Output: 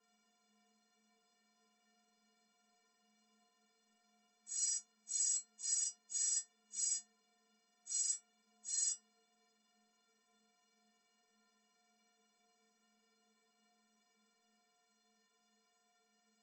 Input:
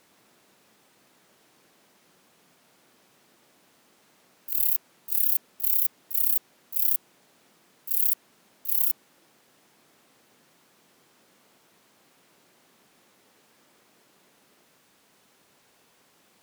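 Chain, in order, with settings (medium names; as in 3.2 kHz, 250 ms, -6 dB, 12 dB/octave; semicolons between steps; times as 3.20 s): frequency axis rescaled in octaves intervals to 80%; inharmonic resonator 210 Hz, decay 0.6 s, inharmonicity 0.03; trim +2 dB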